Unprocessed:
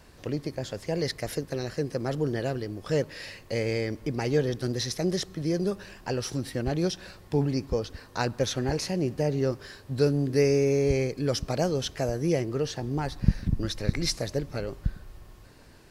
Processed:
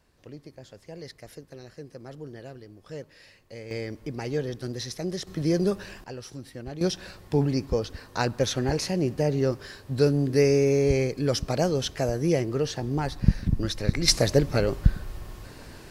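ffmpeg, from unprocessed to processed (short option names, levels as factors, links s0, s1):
-af "asetnsamples=n=441:p=0,asendcmd='3.71 volume volume -4dB;5.27 volume volume 3.5dB;6.04 volume volume -9dB;6.81 volume volume 2dB;14.08 volume volume 9dB',volume=0.237"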